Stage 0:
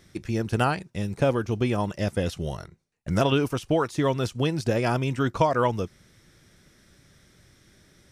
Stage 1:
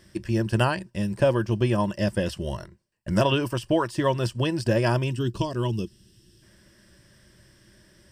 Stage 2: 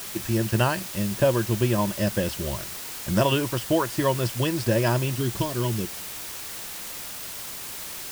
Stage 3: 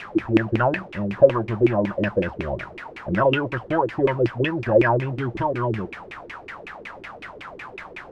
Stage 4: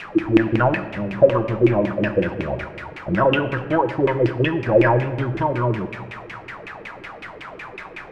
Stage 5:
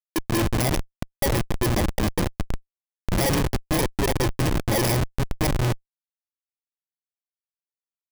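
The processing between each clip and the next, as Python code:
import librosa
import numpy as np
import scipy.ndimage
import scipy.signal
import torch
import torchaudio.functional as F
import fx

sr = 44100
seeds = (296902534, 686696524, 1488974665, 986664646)

y1 = fx.spec_box(x, sr, start_s=5.12, length_s=1.31, low_hz=470.0, high_hz=2500.0, gain_db=-13)
y1 = fx.ripple_eq(y1, sr, per_octave=1.3, db=9)
y2 = fx.quant_dither(y1, sr, seeds[0], bits=6, dither='triangular')
y3 = fx.leveller(y2, sr, passes=2)
y3 = fx.filter_lfo_lowpass(y3, sr, shape='saw_down', hz=5.4, low_hz=300.0, high_hz=2600.0, q=6.4)
y3 = y3 * librosa.db_to_amplitude(-7.5)
y4 = fx.room_shoebox(y3, sr, seeds[1], volume_m3=1100.0, walls='mixed', distance_m=0.59)
y4 = y4 * librosa.db_to_amplitude(1.5)
y5 = fx.bit_reversed(y4, sr, seeds[2], block=32)
y5 = fx.schmitt(y5, sr, flips_db=-17.0)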